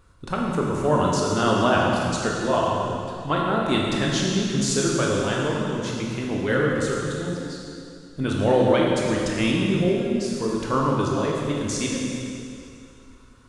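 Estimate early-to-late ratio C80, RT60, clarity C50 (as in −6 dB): 0.5 dB, 2.6 s, −1.0 dB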